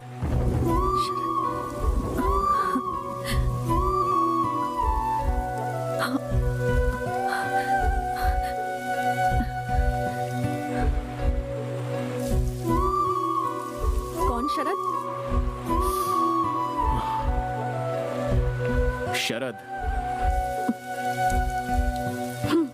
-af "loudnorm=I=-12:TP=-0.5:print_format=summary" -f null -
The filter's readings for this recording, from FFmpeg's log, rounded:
Input Integrated:    -26.3 LUFS
Input True Peak:     -12.7 dBTP
Input LRA:             1.9 LU
Input Threshold:     -36.3 LUFS